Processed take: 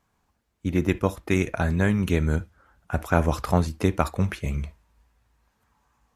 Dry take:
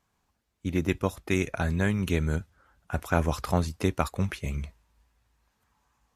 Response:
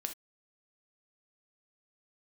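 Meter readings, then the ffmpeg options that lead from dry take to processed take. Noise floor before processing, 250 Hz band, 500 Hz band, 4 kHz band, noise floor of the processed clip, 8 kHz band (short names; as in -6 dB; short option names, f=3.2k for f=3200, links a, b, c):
-76 dBFS, +4.0 dB, +4.0 dB, +0.5 dB, -72 dBFS, +0.5 dB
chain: -filter_complex "[0:a]asplit=2[a][b];[1:a]atrim=start_sample=2205,lowpass=2.6k[c];[b][c]afir=irnorm=-1:irlink=0,volume=-6dB[d];[a][d]amix=inputs=2:normalize=0,volume=1dB"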